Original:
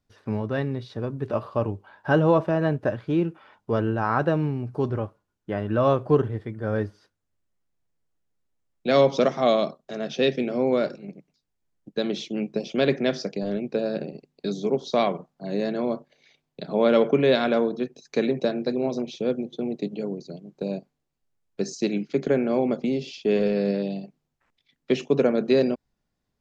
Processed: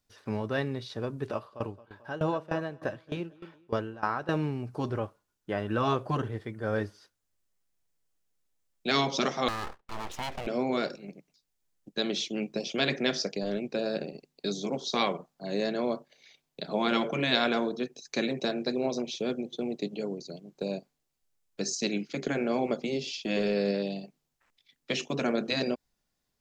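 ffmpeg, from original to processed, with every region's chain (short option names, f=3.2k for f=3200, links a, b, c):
-filter_complex "[0:a]asettb=1/sr,asplit=3[a][b][c];[a]atrim=end=1.304[d];[b]atrim=start=1.3:end=4.29,asetpts=PTS-STARTPTS,afade=t=in:d=0.004:c=qsin,afade=t=out:st=2.986:d=0.004:c=qsin,aecho=1:1:221|442|663:0.168|0.0604|0.0218,atrim=end_sample=131859,aeval=exprs='val(0)*pow(10,-19*if(lt(mod(3.3*n/s,1),2*abs(3.3)/1000),1-mod(3.3*n/s,1)/(2*abs(3.3)/1000),(mod(3.3*n/s,1)-2*abs(3.3)/1000)/(1-2*abs(3.3)/1000))/20)':c=same[e];[c]atrim=start=4.286[f];[d][e]acrossfade=d=0.004:c1=hsin:c2=qsin[g];[g][f]acrossfade=d=0.004:c1=qsin:c2=hsin,asettb=1/sr,asplit=3[h][i][j];[h]atrim=end=9.484[k];[i]atrim=start=9.48:end=10.47,asetpts=PTS-STARTPTS,afade=t=in:d=0.004:c=qsin,afade=t=out:st=0.986:d=0.004:c=qsin,lowpass=2.3k,aeval=exprs='abs(val(0))':c=same,acompressor=threshold=-26dB:ratio=3:attack=3.2:release=140:knee=1:detection=peak[l];[j]atrim=start=10.466[m];[k][l]acrossfade=d=0.004:c1=hsin:c2=qsin[n];[n][m]acrossfade=d=0.004:c1=qsin:c2=hsin,equalizer=f=110:w=0.36:g=-5,afftfilt=real='re*lt(hypot(re,im),0.501)':imag='im*lt(hypot(re,im),0.501)':win_size=1024:overlap=0.75,highshelf=f=3.5k:g=9,volume=-1.5dB"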